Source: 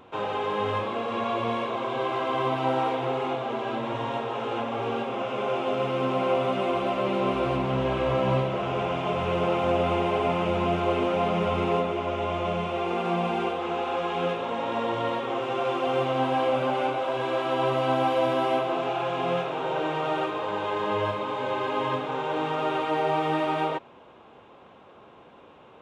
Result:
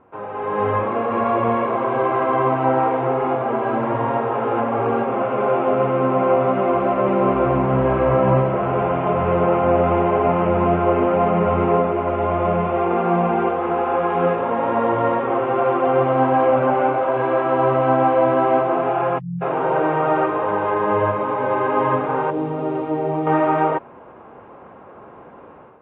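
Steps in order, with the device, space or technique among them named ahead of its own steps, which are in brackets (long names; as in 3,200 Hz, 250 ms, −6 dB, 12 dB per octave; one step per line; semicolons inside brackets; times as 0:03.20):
0:19.18–0:19.42: time-frequency box erased 200–4,900 Hz
0:22.30–0:23.27: drawn EQ curve 310 Hz 0 dB, 1,500 Hz −16 dB, 5,200 Hz −1 dB
action camera in a waterproof case (low-pass filter 1,900 Hz 24 dB per octave; automatic gain control gain up to 12 dB; level −2.5 dB; AAC 48 kbit/s 44,100 Hz)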